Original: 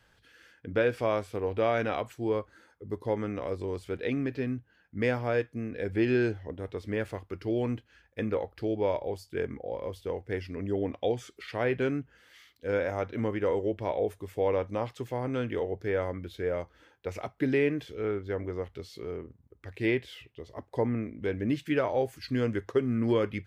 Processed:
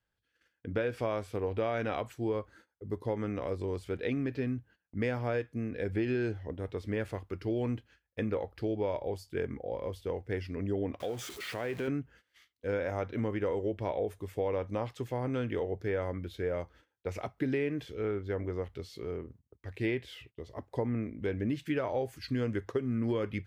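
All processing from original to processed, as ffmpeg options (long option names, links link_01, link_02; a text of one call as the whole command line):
ffmpeg -i in.wav -filter_complex "[0:a]asettb=1/sr,asplit=3[link_01][link_02][link_03];[link_01]atrim=end=11.004[link_04];[link_02]atrim=start=11:end=11.88,asetpts=PTS-STARTPTS,afade=type=in:duration=0.004:curve=qsin,afade=type=out:start_time=0.876:duration=0.004:curve=qsin,aeval=exprs='val(0)+0.5*0.0119*sgn(val(0))':channel_layout=same,highpass=frequency=180:poles=1,acompressor=threshold=-32dB:ratio=2.5:attack=3.2:release=140:knee=1:detection=peak[link_05];[link_03]atrim=start=11.876[link_06];[link_04][link_05]acrossfade=duration=0.004:curve1=hsin:curve2=qsin[link_07];[link_07][link_06]acrossfade=duration=0.004:curve1=qsin:curve2=hsin,agate=range=-20dB:threshold=-54dB:ratio=16:detection=peak,lowshelf=frequency=190:gain=3.5,acompressor=threshold=-26dB:ratio=6,volume=-1.5dB" out.wav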